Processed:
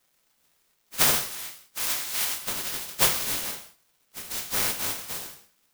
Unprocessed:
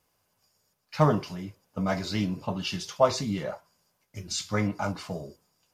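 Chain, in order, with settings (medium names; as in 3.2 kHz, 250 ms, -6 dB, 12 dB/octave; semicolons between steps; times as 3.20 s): spectral contrast reduction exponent 0.12; 1.15–2.42 s: Bessel high-pass 1.1 kHz, order 2; crackle 490 per s -55 dBFS; gated-style reverb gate 220 ms falling, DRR 3.5 dB; careless resampling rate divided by 2×, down none, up zero stuff; trim -3.5 dB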